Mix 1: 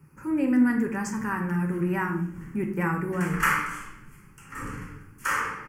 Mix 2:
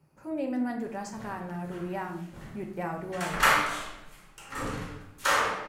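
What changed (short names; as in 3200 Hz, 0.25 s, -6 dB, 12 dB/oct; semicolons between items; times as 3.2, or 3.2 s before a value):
speech -11.5 dB; master: remove fixed phaser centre 1600 Hz, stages 4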